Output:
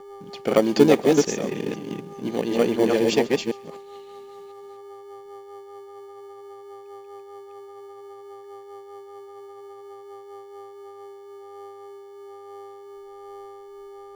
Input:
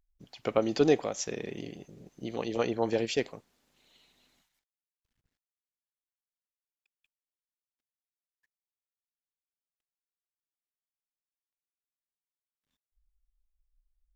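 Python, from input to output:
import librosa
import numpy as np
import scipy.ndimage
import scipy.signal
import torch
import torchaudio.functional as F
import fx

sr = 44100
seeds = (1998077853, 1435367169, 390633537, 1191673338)

p1 = fx.reverse_delay(x, sr, ms=251, wet_db=-2.5)
p2 = fx.dmg_buzz(p1, sr, base_hz=400.0, harmonics=3, level_db=-49.0, tilt_db=-4, odd_only=False)
p3 = fx.rotary_switch(p2, sr, hz=5.0, then_hz=1.2, switch_at_s=10.22)
p4 = fx.sample_hold(p3, sr, seeds[0], rate_hz=1300.0, jitter_pct=0)
p5 = p3 + F.gain(torch.from_numpy(p4), -11.5).numpy()
p6 = fx.low_shelf_res(p5, sr, hz=130.0, db=-8.5, q=1.5)
p7 = p6 + fx.echo_wet_highpass(p6, sr, ms=134, feedback_pct=35, hz=2200.0, wet_db=-19, dry=0)
y = F.gain(torch.from_numpy(p7), 8.0).numpy()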